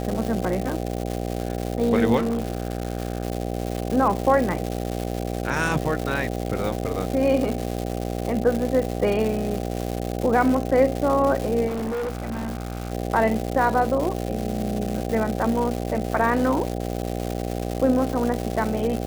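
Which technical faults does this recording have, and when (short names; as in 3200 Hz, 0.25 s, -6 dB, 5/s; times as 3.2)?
buzz 60 Hz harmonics 13 -28 dBFS
crackle 360/s -26 dBFS
2.16–3.25 clipped -20 dBFS
11.67–12.93 clipped -24.5 dBFS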